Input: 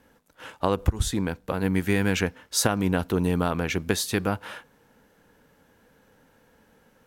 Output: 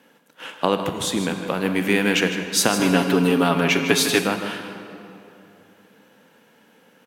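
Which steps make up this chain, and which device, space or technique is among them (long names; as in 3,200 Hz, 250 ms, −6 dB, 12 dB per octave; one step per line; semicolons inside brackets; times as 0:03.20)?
PA in a hall (high-pass filter 160 Hz 24 dB per octave; parametric band 2,900 Hz +6.5 dB 0.75 octaves; single-tap delay 155 ms −11 dB; convolution reverb RT60 2.9 s, pre-delay 27 ms, DRR 7 dB)
0:02.79–0:04.24: comb filter 7.2 ms, depth 87%
level +3.5 dB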